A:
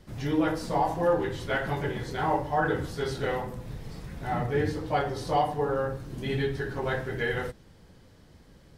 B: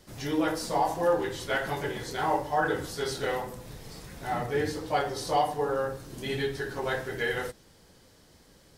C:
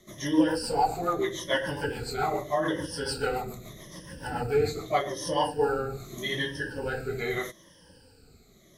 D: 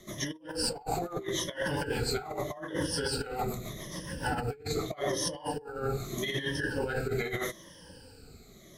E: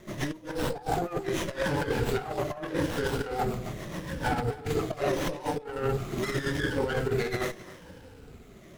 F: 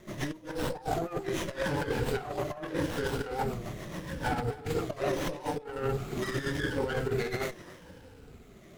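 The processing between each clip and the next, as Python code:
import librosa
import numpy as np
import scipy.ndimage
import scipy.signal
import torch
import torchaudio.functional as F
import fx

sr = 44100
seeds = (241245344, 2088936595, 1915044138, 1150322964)

y1 = fx.bass_treble(x, sr, bass_db=-7, treble_db=8)
y2 = fx.spec_ripple(y1, sr, per_octave=1.2, drift_hz=-0.81, depth_db=18)
y2 = fx.rotary_switch(y2, sr, hz=7.0, then_hz=0.7, switch_at_s=5.12)
y3 = fx.over_compress(y2, sr, threshold_db=-33.0, ratio=-0.5)
y4 = y3 + 10.0 ** (-18.0 / 20.0) * np.pad(y3, (int(267 * sr / 1000.0), 0))[:len(y3)]
y4 = fx.running_max(y4, sr, window=9)
y4 = F.gain(torch.from_numpy(y4), 4.0).numpy()
y5 = fx.record_warp(y4, sr, rpm=45.0, depth_cents=100.0)
y5 = F.gain(torch.from_numpy(y5), -2.5).numpy()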